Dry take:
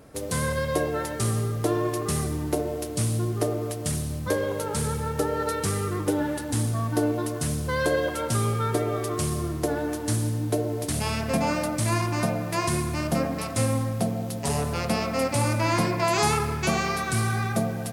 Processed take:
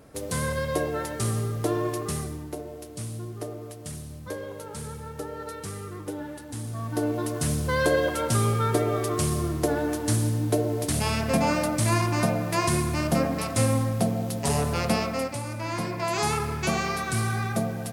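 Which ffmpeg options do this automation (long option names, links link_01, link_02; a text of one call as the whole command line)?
ffmpeg -i in.wav -af "volume=18.5dB,afade=type=out:start_time=1.91:duration=0.59:silence=0.398107,afade=type=in:start_time=6.62:duration=0.88:silence=0.281838,afade=type=out:start_time=14.92:duration=0.5:silence=0.251189,afade=type=in:start_time=15.42:duration=1.18:silence=0.354813" out.wav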